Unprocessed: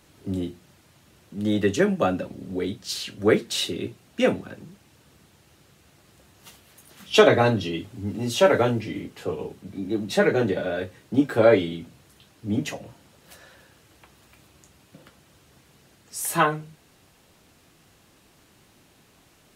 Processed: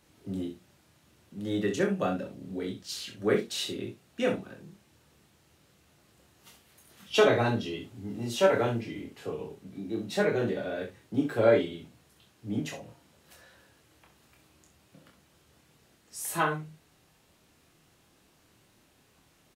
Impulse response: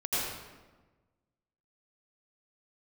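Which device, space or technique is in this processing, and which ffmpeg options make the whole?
slapback doubling: -filter_complex "[0:a]asplit=3[s0][s1][s2];[s1]adelay=26,volume=0.562[s3];[s2]adelay=64,volume=0.335[s4];[s0][s3][s4]amix=inputs=3:normalize=0,volume=0.398"

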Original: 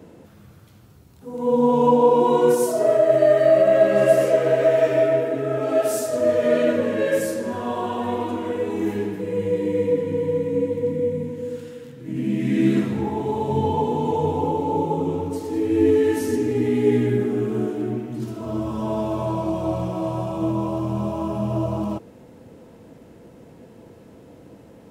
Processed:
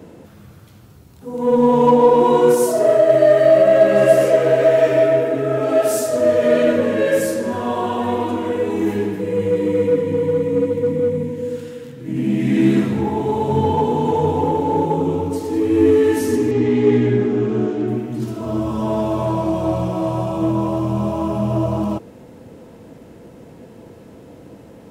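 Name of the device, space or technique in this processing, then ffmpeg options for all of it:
parallel distortion: -filter_complex "[0:a]asplit=2[s0][s1];[s1]asoftclip=type=hard:threshold=0.0841,volume=0.251[s2];[s0][s2]amix=inputs=2:normalize=0,asettb=1/sr,asplit=3[s3][s4][s5];[s3]atrim=end=16.514[s6];[s4]atrim=start=16.51:end=17.88,asetpts=PTS-STARTPTS,afade=t=in:d=0.004:c=qsin,afade=t=out:st=1.366:d=0.004:c=qsin,lowpass=f=6500:w=0.5412,lowpass=f=6500:w=1.3066[s7];[s5]atrim=start=17.876[s8];[s6][s7]acrossfade=d=0.004:c1=hsin:c2=qsin[s9];[s9][s8]acrossfade=d=0.004:c1=qsin:c2=hsin,volume=1.41"

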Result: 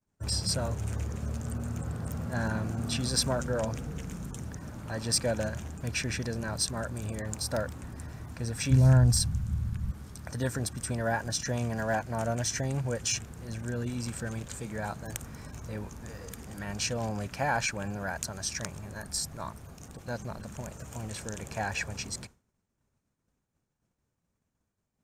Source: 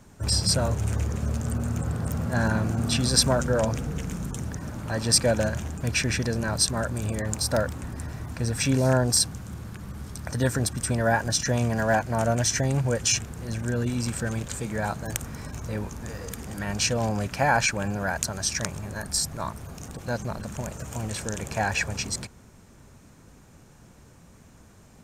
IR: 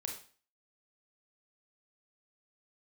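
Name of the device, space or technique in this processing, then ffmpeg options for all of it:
parallel distortion: -filter_complex "[0:a]asplit=2[s0][s1];[s1]asoftclip=type=hard:threshold=0.15,volume=0.299[s2];[s0][s2]amix=inputs=2:normalize=0,agate=range=0.0224:threshold=0.0178:ratio=3:detection=peak,asplit=3[s3][s4][s5];[s3]afade=t=out:st=8.7:d=0.02[s6];[s4]asubboost=boost=8.5:cutoff=130,afade=t=in:st=8.7:d=0.02,afade=t=out:st=9.9:d=0.02[s7];[s5]afade=t=in:st=9.9:d=0.02[s8];[s6][s7][s8]amix=inputs=3:normalize=0,volume=0.355"

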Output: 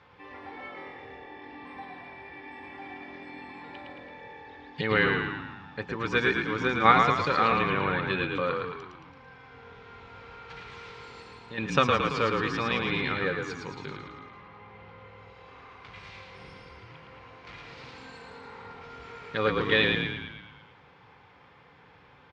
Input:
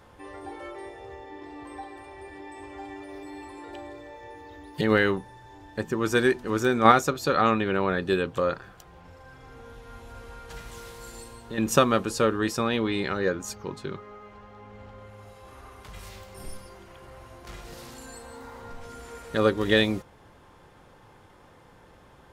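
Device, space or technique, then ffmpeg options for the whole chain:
frequency-shifting delay pedal into a guitar cabinet: -filter_complex "[0:a]asplit=9[s0][s1][s2][s3][s4][s5][s6][s7][s8];[s1]adelay=111,afreqshift=-42,volume=0.631[s9];[s2]adelay=222,afreqshift=-84,volume=0.359[s10];[s3]adelay=333,afreqshift=-126,volume=0.204[s11];[s4]adelay=444,afreqshift=-168,volume=0.117[s12];[s5]adelay=555,afreqshift=-210,volume=0.0668[s13];[s6]adelay=666,afreqshift=-252,volume=0.038[s14];[s7]adelay=777,afreqshift=-294,volume=0.0216[s15];[s8]adelay=888,afreqshift=-336,volume=0.0123[s16];[s0][s9][s10][s11][s12][s13][s14][s15][s16]amix=inputs=9:normalize=0,highpass=110,equalizer=f=220:t=q:w=4:g=-7,equalizer=f=350:t=q:w=4:g=-9,equalizer=f=630:t=q:w=4:g=-8,equalizer=f=2300:t=q:w=4:g=7,lowpass=f=4500:w=0.5412,lowpass=f=4500:w=1.3066,volume=0.841"

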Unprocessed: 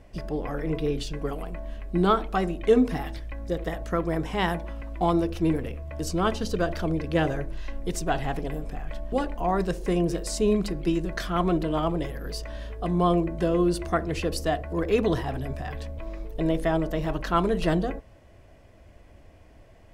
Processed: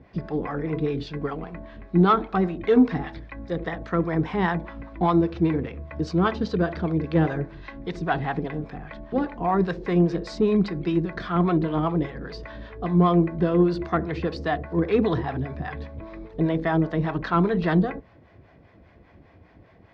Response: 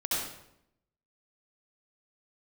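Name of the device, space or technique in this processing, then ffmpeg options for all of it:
guitar amplifier with harmonic tremolo: -filter_complex "[0:a]acrossover=split=570[s0][s1];[s0]aeval=exprs='val(0)*(1-0.7/2+0.7/2*cos(2*PI*5*n/s))':c=same[s2];[s1]aeval=exprs='val(0)*(1-0.7/2-0.7/2*cos(2*PI*5*n/s))':c=same[s3];[s2][s3]amix=inputs=2:normalize=0,asoftclip=type=tanh:threshold=0.188,highpass=91,equalizer=f=170:t=q:w=4:g=3,equalizer=f=600:t=q:w=4:g=-7,equalizer=f=2900:t=q:w=4:g=-9,lowpass=f=3900:w=0.5412,lowpass=f=3900:w=1.3066,volume=2.24"

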